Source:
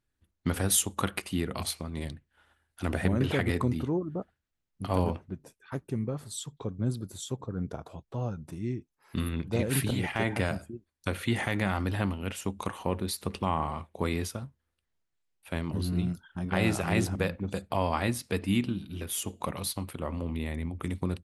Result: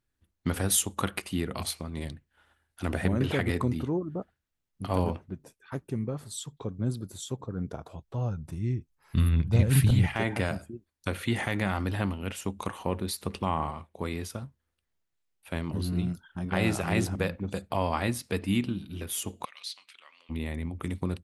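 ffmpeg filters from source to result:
ffmpeg -i in.wav -filter_complex "[0:a]asettb=1/sr,asplit=3[link_01][link_02][link_03];[link_01]atrim=end=7.744[link_04];[link_02]atrim=start=7.74:end=10.14,asetpts=PTS-STARTPTS,afade=type=in:duration=0.004:curve=qsin,afade=type=out:start_time=2.396:duration=0.004:curve=qsin,asubboost=boost=9.5:cutoff=140[link_05];[link_03]atrim=start=10.136[link_06];[link_04][link_05]acrossfade=duration=0.004:curve1=hsin:curve2=qsin[link_07];[link_07][link_06]acrossfade=duration=0.004:curve1=qsin:curve2=hsin,asplit=3[link_08][link_09][link_10];[link_08]afade=type=out:start_time=19.44:duration=0.02[link_11];[link_09]asuperpass=centerf=3600:order=4:qfactor=0.88,afade=type=in:start_time=19.44:duration=0.02,afade=type=out:start_time=20.29:duration=0.02[link_12];[link_10]afade=type=in:start_time=20.29:duration=0.02[link_13];[link_11][link_12][link_13]amix=inputs=3:normalize=0,asplit=3[link_14][link_15][link_16];[link_14]atrim=end=13.712[link_17];[link_15]atrim=start=13.708:end=14.302,asetpts=PTS-STARTPTS,volume=-3.5dB[link_18];[link_16]atrim=start=14.298[link_19];[link_17][link_18]acrossfade=duration=0.004:curve1=hsin:curve2=hsin[link_20];[link_20][link_19]acrossfade=duration=0.004:curve1=hsin:curve2=hsin" out.wav

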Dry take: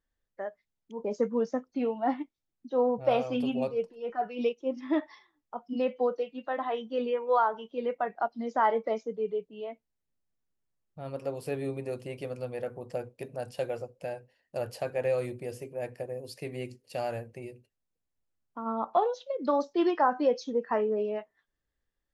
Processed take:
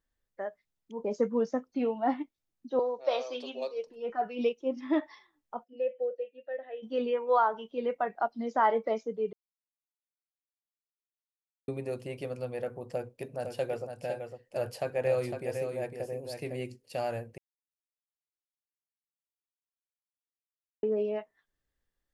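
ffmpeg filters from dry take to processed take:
ffmpeg -i in.wav -filter_complex "[0:a]asettb=1/sr,asplit=3[link_01][link_02][link_03];[link_01]atrim=end=2.794[link_04];[link_02]atrim=start=2.79:end=3.87,asetpts=PTS-STARTPTS,afade=type=in:duration=0.004:curve=qsin,afade=type=out:start_time=1.076:duration=0.004:curve=qsin,highpass=frequency=400:width=0.5412,highpass=frequency=400:width=1.3066,equalizer=frequency=450:width_type=q:width=4:gain=-4,equalizer=frequency=770:width_type=q:width=4:gain=-8,equalizer=frequency=1400:width_type=q:width=4:gain=-6,equalizer=frequency=2700:width_type=q:width=4:gain=-5,equalizer=frequency=4000:width_type=q:width=4:gain=10,equalizer=frequency=5900:width_type=q:width=4:gain=8,lowpass=frequency=7000:width=0.5412,lowpass=frequency=7000:width=1.3066[link_05];[link_03]atrim=start=3.866[link_06];[link_04][link_05]acrossfade=duration=0.004:curve1=hsin:curve2=qsin[link_07];[link_07][link_06]acrossfade=duration=0.004:curve1=qsin:curve2=hsin,asplit=3[link_08][link_09][link_10];[link_08]afade=type=out:start_time=5.63:duration=0.02[link_11];[link_09]asplit=3[link_12][link_13][link_14];[link_12]bandpass=frequency=530:width_type=q:width=8,volume=0dB[link_15];[link_13]bandpass=frequency=1840:width_type=q:width=8,volume=-6dB[link_16];[link_14]bandpass=frequency=2480:width_type=q:width=8,volume=-9dB[link_17];[link_15][link_16][link_17]amix=inputs=3:normalize=0,afade=type=in:start_time=5.63:duration=0.02,afade=type=out:start_time=6.82:duration=0.02[link_18];[link_10]afade=type=in:start_time=6.82:duration=0.02[link_19];[link_11][link_18][link_19]amix=inputs=3:normalize=0,asettb=1/sr,asplit=3[link_20][link_21][link_22];[link_20]atrim=end=12.864[link_23];[link_21]atrim=start=12.86:end=16.6,asetpts=PTS-STARTPTS,afade=type=in:duration=0.004:curve=qsin,afade=type=out:start_time=3.736:duration=0.004:curve=qsin,aecho=1:1:506:0.473,atrim=end_sample=164934[link_24];[link_22]atrim=start=16.596[link_25];[link_23][link_24]acrossfade=duration=0.004:curve1=hsin:curve2=qsin[link_26];[link_26][link_25]acrossfade=duration=0.004:curve1=qsin:curve2=hsin,asplit=5[link_27][link_28][link_29][link_30][link_31];[link_27]atrim=end=9.33,asetpts=PTS-STARTPTS,afade=type=out:start_time=9.326:duration=0.004:curve=hsin[link_32];[link_28]atrim=start=9.33:end=11.68,asetpts=PTS-STARTPTS,volume=0[link_33];[link_29]atrim=start=11.68:end=17.38,asetpts=PTS-STARTPTS,afade=type=in:duration=0.004:curve=hsin,afade=type=out:start_time=5.696:duration=0.004:curve=hsin[link_34];[link_30]atrim=start=17.38:end=20.83,asetpts=PTS-STARTPTS,volume=0[link_35];[link_31]atrim=start=20.83,asetpts=PTS-STARTPTS,afade=type=in:duration=0.004:curve=hsin[link_36];[link_32][link_33][link_34][link_35][link_36]concat=n=5:v=0:a=1" out.wav

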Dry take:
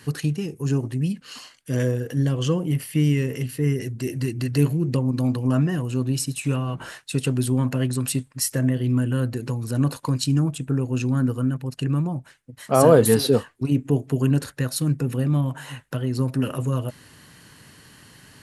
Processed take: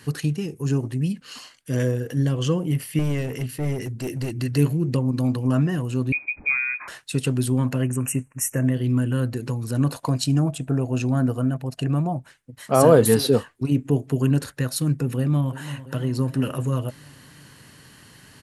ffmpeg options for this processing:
ffmpeg -i in.wav -filter_complex "[0:a]asettb=1/sr,asplit=3[link_01][link_02][link_03];[link_01]atrim=end=2.994[link_04];[link_02]atrim=start=2.99:end=4.31,asetpts=PTS-STARTPTS,afade=type=in:duration=0.004:curve=qsin,afade=type=out:start_time=1.316:duration=0.004:curve=qsin,aeval=exprs='clip(val(0),-1,0.0596)':channel_layout=same[link_05];[link_03]atrim=start=4.306[link_06];[link_04][link_05]acrossfade=duration=0.004:curve1=hsin:curve2=qsin[link_07];[link_07][link_06]acrossfade=duration=0.004:curve1=qsin:curve2=hsin,asettb=1/sr,asplit=3[link_08][link_09][link_10];[link_08]atrim=end=6.124[link_11];[link_09]atrim=start=6.12:end=6.88,asetpts=PTS-STARTPTS,afade=type=in:duration=0.004:curve=qsin,afade=type=out:start_time=0.756:duration=0.004:curve=qsin,lowpass=frequency=2200:width_type=q:width=0.5098,lowpass=frequency=2200:width_type=q:width=0.6013,lowpass=frequency=2200:width_type=q:width=0.9,lowpass=frequency=2200:width_type=q:width=2.563,afreqshift=-2600[link_12];[link_10]atrim=start=6.876[link_13];[link_11][link_12]acrossfade=duration=0.004:curve1=hsin:curve2=qsin[link_14];[link_14][link_13]acrossfade=duration=0.004:curve1=qsin:curve2=hsin,asplit=3[link_15][link_16][link_17];[link_15]afade=type=out:start_time=7.81:duration=0.02[link_18];[link_16]asuperstop=centerf=4100:order=12:qfactor=1.4,afade=type=in:start_time=7.81:duration=0.02,afade=type=out:start_time=8.63:duration=0.02[link_19];[link_17]afade=type=in:start_time=8.63:duration=0.02[link_20];[link_18][link_19][link_20]amix=inputs=3:normalize=0,asettb=1/sr,asplit=3[link_21][link_22][link_23];[link_21]atrim=end=9.944[link_24];[link_22]atrim=start=9.94:end=12.18,asetpts=PTS-STARTPTS,afade=type=in:duration=0.004:curve=qsin,afade=type=out:start_time=2.236:duration=0.004:curve=qsin,equalizer=frequency=680:width_type=o:width=0.39:gain=13.5[link_25];[link_23]atrim=start=12.176[link_26];[link_24][link_25]acrossfade=duration=0.004:curve1=hsin:curve2=qsin[link_27];[link_27][link_26]acrossfade=duration=0.004:curve1=qsin:curve2=hsin,asplit=2[link_28][link_29];[link_29]afade=type=in:start_time=15.17:duration=0.01,afade=type=out:start_time=15.83:duration=0.01,aecho=0:1:340|680|1020|1360|1700|2040|2380:0.188365|0.122437|0.0795842|0.0517297|0.0336243|0.0218558|0.0142063[link_30];[link_28][link_30]amix=inputs=2:normalize=0" out.wav

